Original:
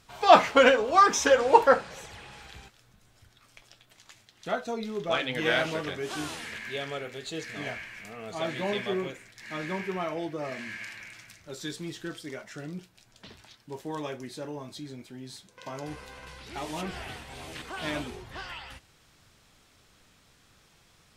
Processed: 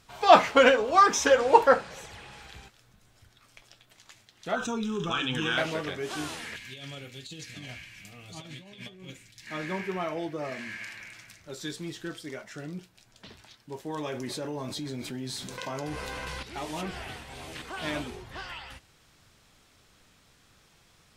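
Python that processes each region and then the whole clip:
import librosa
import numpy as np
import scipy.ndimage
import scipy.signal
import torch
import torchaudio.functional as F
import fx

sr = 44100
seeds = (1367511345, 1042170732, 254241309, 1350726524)

y = fx.chain(x, sr, fx.fixed_phaser(hz=3000.0, stages=8),
    fx.env_flatten(amount_pct=70), at=(4.56, 5.58))
y = fx.chain(y, sr, fx.band_shelf(hz=830.0, db=-11.5, octaves=2.9),
    fx.notch_comb(f0_hz=220.0),
    fx.over_compress(threshold_db=-42.0, ratio=-0.5), at=(6.56, 9.47))
y = fx.chain(y, sr, fx.echo_single(ms=260, db=-23.0),
    fx.env_flatten(amount_pct=70), at=(13.98, 16.43))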